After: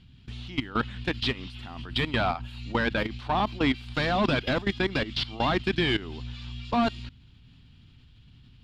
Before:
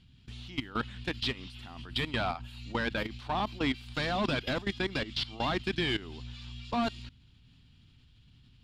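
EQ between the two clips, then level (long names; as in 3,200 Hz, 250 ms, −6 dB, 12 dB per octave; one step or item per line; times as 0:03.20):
high-shelf EQ 5,900 Hz −10 dB
+6.0 dB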